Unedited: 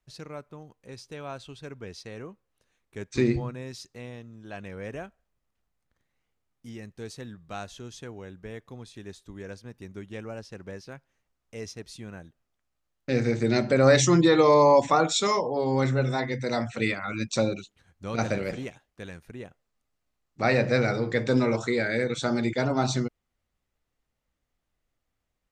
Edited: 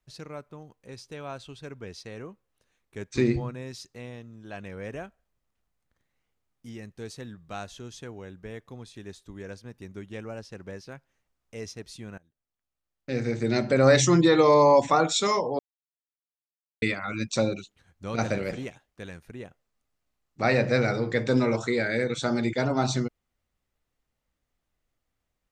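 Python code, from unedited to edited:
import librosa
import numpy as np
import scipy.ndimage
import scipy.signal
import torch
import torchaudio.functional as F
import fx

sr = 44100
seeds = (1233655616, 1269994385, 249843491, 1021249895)

y = fx.edit(x, sr, fx.fade_in_from(start_s=12.18, length_s=1.63, floor_db=-22.5),
    fx.silence(start_s=15.59, length_s=1.23), tone=tone)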